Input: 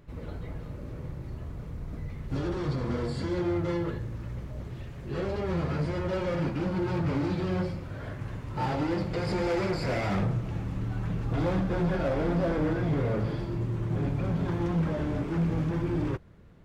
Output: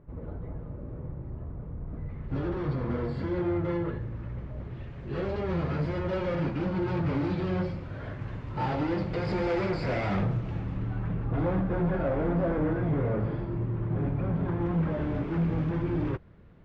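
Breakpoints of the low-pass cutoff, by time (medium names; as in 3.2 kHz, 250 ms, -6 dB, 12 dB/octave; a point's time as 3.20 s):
1.83 s 1.1 kHz
2.37 s 2.4 kHz
4.60 s 2.4 kHz
5.27 s 4 kHz
10.51 s 4 kHz
11.26 s 1.9 kHz
14.54 s 1.9 kHz
15.17 s 3.3 kHz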